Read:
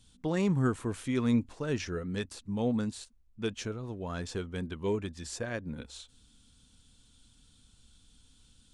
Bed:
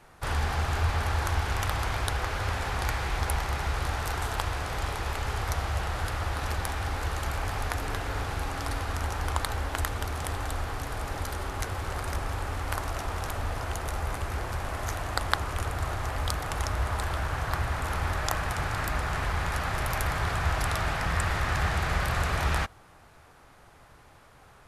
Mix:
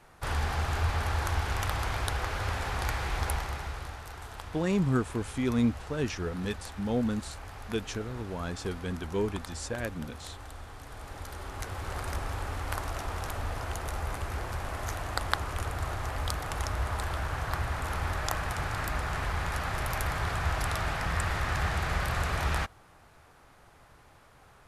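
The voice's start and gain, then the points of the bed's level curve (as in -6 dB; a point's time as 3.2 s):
4.30 s, +1.0 dB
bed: 3.29 s -2 dB
4.04 s -12.5 dB
10.71 s -12.5 dB
11.98 s -2.5 dB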